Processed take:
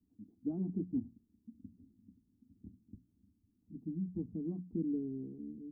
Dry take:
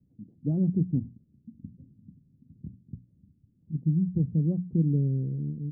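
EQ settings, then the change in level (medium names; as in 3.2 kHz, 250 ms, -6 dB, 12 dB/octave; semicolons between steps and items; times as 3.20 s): bass shelf 130 Hz -6.5 dB; band-stop 370 Hz, Q 12; static phaser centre 540 Hz, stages 6; -1.5 dB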